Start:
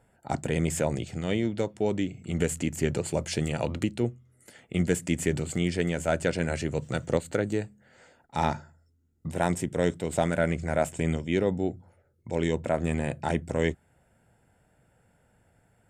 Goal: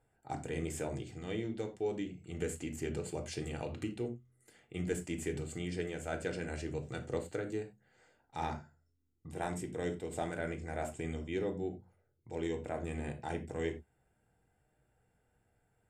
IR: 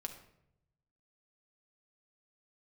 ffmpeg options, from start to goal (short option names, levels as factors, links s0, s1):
-filter_complex "[1:a]atrim=start_sample=2205,afade=t=out:st=0.26:d=0.01,atrim=end_sample=11907,asetrate=88200,aresample=44100[s0];[0:a][s0]afir=irnorm=-1:irlink=0,volume=0.75"